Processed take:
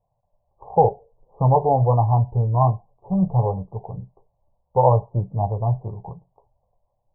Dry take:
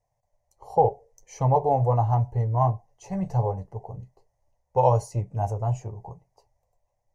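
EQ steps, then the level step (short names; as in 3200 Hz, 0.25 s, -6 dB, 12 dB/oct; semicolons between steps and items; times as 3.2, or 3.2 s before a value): brick-wall FIR low-pass 1200 Hz; bell 180 Hz +6.5 dB 0.52 oct; +3.5 dB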